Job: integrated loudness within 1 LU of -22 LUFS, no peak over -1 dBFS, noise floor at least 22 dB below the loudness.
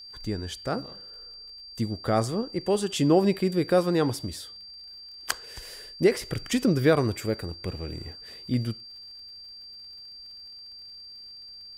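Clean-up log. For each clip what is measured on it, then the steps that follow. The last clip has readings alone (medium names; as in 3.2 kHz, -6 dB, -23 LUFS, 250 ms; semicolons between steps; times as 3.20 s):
tick rate 47 per s; steady tone 4.7 kHz; tone level -42 dBFS; loudness -27.0 LUFS; peak level -8.5 dBFS; loudness target -22.0 LUFS
-> de-click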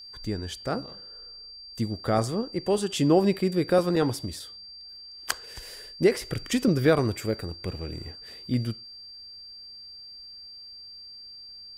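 tick rate 0.17 per s; steady tone 4.7 kHz; tone level -42 dBFS
-> band-stop 4.7 kHz, Q 30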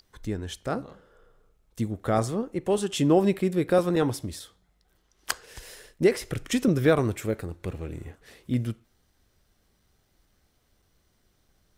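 steady tone not found; loudness -27.0 LUFS; peak level -8.5 dBFS; loudness target -22.0 LUFS
-> trim +5 dB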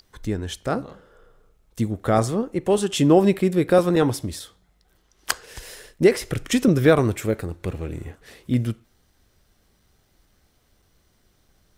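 loudness -22.0 LUFS; peak level -3.5 dBFS; noise floor -64 dBFS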